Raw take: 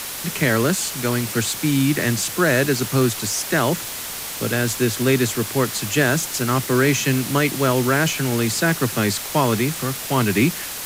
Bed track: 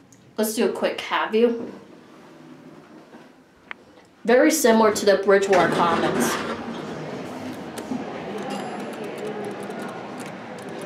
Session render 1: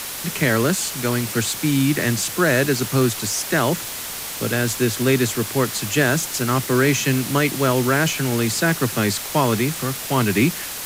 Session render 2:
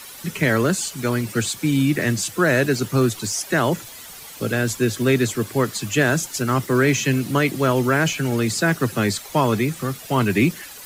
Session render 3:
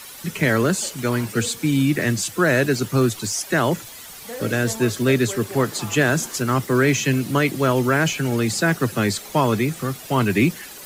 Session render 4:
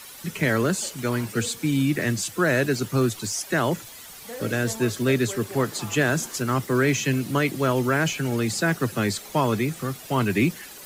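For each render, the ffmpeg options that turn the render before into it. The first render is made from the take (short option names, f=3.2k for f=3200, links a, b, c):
-af anull
-af "afftdn=nr=12:nf=-30"
-filter_complex "[1:a]volume=-18dB[a];[0:a][a]amix=inputs=2:normalize=0"
-af "volume=-3.5dB"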